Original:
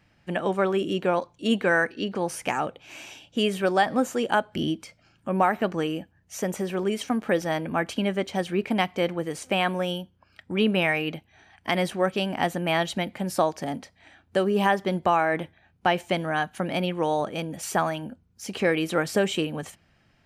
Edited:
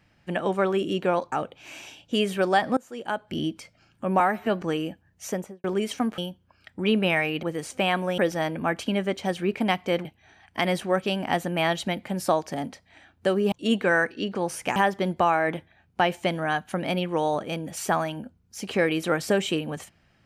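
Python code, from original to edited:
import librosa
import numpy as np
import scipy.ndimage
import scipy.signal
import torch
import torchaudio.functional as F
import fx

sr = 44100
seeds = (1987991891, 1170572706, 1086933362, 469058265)

y = fx.studio_fade_out(x, sr, start_s=6.36, length_s=0.38)
y = fx.edit(y, sr, fx.move(start_s=1.32, length_s=1.24, to_s=14.62),
    fx.fade_in_from(start_s=4.01, length_s=0.79, floor_db=-23.5),
    fx.stretch_span(start_s=5.44, length_s=0.28, factor=1.5),
    fx.swap(start_s=7.28, length_s=1.87, other_s=9.9, other_length_s=1.25), tone=tone)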